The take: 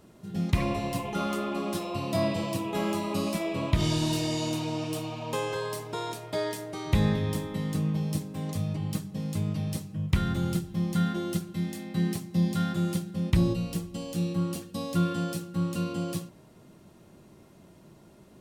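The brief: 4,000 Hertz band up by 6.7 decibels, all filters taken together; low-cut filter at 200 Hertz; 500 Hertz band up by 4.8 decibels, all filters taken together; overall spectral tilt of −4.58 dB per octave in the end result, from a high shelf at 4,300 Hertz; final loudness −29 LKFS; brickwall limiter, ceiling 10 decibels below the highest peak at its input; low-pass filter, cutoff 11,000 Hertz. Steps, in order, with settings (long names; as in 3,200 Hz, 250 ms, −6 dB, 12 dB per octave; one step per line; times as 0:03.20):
high-pass filter 200 Hz
low-pass filter 11,000 Hz
parametric band 500 Hz +6.5 dB
parametric band 4,000 Hz +4.5 dB
high-shelf EQ 4,300 Hz +7 dB
level +2.5 dB
brickwall limiter −19 dBFS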